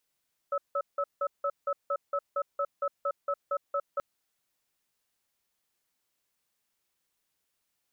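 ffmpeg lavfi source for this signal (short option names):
-f lavfi -i "aevalsrc='0.0355*(sin(2*PI*567*t)+sin(2*PI*1300*t))*clip(min(mod(t,0.23),0.06-mod(t,0.23))/0.005,0,1)':d=3.48:s=44100"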